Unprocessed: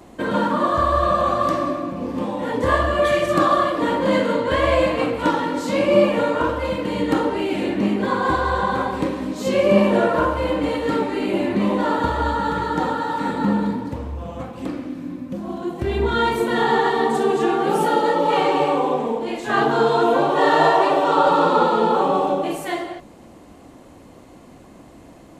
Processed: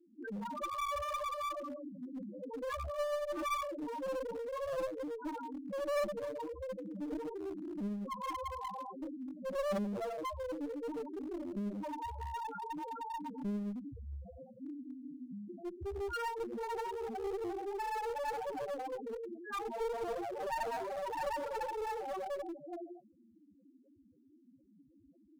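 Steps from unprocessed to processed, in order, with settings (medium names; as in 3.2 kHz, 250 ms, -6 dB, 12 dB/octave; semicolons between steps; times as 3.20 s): loudest bins only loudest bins 2; one-sided clip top -26 dBFS; pre-emphasis filter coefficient 0.8; trim +1 dB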